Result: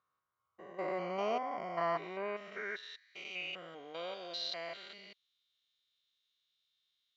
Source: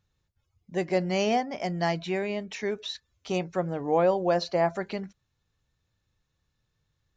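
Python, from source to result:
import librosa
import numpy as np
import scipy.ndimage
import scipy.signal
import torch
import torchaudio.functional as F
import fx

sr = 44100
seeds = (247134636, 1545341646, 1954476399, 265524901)

y = fx.spec_steps(x, sr, hold_ms=200)
y = fx.filter_sweep_bandpass(y, sr, from_hz=1100.0, to_hz=3500.0, start_s=2.25, end_s=3.83, q=4.9)
y = fx.notch_comb(y, sr, f0_hz=860.0)
y = F.gain(torch.from_numpy(y), 12.5).numpy()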